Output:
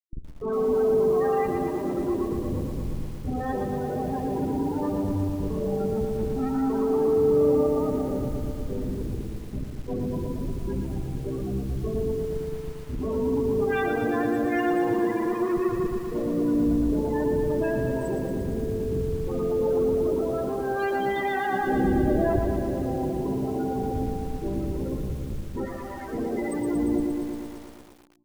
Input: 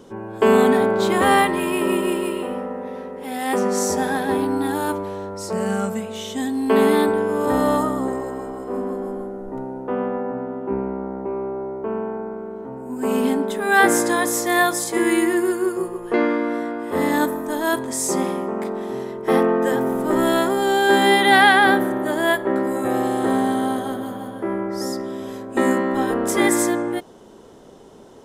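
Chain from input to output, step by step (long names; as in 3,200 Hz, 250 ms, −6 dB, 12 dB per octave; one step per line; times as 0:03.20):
loose part that buzzes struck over −25 dBFS, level −15 dBFS
0:14.42–0:14.94: double-tracking delay 28 ms −4 dB
0:22.28–0:22.93: gain on a spectral selection 1,000–2,900 Hz −22 dB
comparator with hysteresis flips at −24.5 dBFS
0:25.65–0:26.12: octave-band graphic EQ 125/250/2,000/8,000 Hz −7/−10/+5/−9 dB
brickwall limiter −20 dBFS, peak gain reduction 6 dB
0:21.46–0:22.39: tilt shelving filter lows +7 dB, about 1,400 Hz
spring reverb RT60 2.4 s, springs 34/52 ms, chirp 45 ms, DRR 12 dB
spectral peaks only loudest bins 16
repeating echo 130 ms, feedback 30%, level −16 dB
feedback echo at a low word length 116 ms, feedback 80%, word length 7 bits, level −6 dB
level −5.5 dB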